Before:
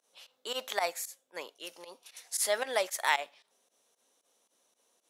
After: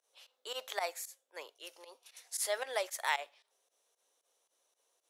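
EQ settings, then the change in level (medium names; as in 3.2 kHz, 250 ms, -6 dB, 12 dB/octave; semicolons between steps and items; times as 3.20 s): high-pass 360 Hz 24 dB/octave; -5.0 dB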